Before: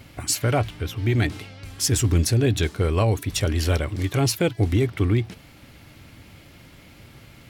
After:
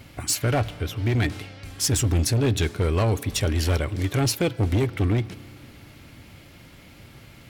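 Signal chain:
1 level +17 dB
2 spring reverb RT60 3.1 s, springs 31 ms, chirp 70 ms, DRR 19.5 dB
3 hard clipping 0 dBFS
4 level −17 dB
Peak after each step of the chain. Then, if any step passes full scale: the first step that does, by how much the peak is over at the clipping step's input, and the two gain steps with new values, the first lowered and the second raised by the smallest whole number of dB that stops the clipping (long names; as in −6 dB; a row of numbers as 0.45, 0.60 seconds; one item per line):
+5.5, +6.0, 0.0, −17.0 dBFS
step 1, 6.0 dB
step 1 +11 dB, step 4 −11 dB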